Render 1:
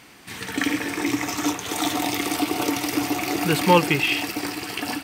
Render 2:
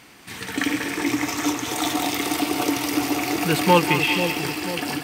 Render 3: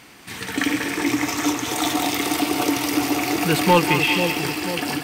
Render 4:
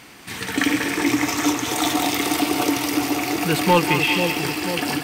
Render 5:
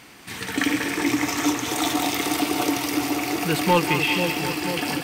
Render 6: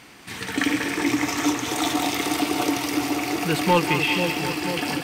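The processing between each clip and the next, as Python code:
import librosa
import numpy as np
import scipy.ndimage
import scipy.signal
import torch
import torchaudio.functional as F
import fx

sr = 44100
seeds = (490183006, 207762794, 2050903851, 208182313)

y1 = fx.echo_split(x, sr, split_hz=750.0, low_ms=490, high_ms=192, feedback_pct=52, wet_db=-7.5)
y2 = 10.0 ** (-7.5 / 20.0) * np.tanh(y1 / 10.0 ** (-7.5 / 20.0))
y2 = y2 * 10.0 ** (2.0 / 20.0)
y3 = fx.rider(y2, sr, range_db=10, speed_s=2.0)
y4 = y3 + 10.0 ** (-14.0 / 20.0) * np.pad(y3, (int(743 * sr / 1000.0), 0))[:len(y3)]
y4 = y4 * 10.0 ** (-2.5 / 20.0)
y5 = fx.high_shelf(y4, sr, hz=12000.0, db=-6.5)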